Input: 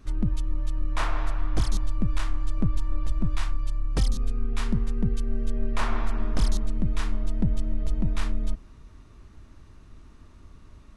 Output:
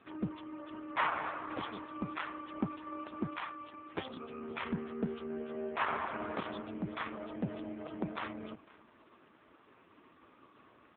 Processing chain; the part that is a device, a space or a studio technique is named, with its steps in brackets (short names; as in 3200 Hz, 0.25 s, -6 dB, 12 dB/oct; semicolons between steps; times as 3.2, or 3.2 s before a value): 4.66–5.8 HPF 87 Hz -> 290 Hz 12 dB/oct; satellite phone (BPF 390–3300 Hz; echo 0.508 s -22.5 dB; gain +5 dB; AMR-NB 4.75 kbps 8000 Hz)